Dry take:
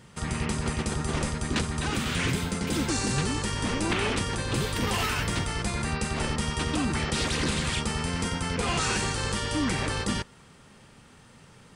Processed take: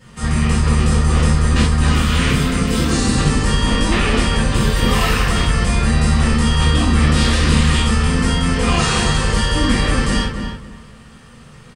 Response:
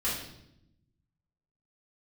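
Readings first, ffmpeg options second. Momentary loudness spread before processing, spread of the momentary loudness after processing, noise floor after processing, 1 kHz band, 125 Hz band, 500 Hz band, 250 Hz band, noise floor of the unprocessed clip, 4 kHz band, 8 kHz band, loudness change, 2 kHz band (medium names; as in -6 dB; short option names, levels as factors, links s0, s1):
3 LU, 3 LU, -41 dBFS, +10.0 dB, +14.5 dB, +9.5 dB, +12.0 dB, -54 dBFS, +10.0 dB, +7.5 dB, +12.0 dB, +9.5 dB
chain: -filter_complex "[0:a]asplit=2[s0][s1];[s1]adelay=274,lowpass=f=2200:p=1,volume=0.501,asplit=2[s2][s3];[s3]adelay=274,lowpass=f=2200:p=1,volume=0.24,asplit=2[s4][s5];[s5]adelay=274,lowpass=f=2200:p=1,volume=0.24[s6];[s0][s2][s4][s6]amix=inputs=4:normalize=0[s7];[1:a]atrim=start_sample=2205,atrim=end_sample=4410[s8];[s7][s8]afir=irnorm=-1:irlink=0,volume=1.26"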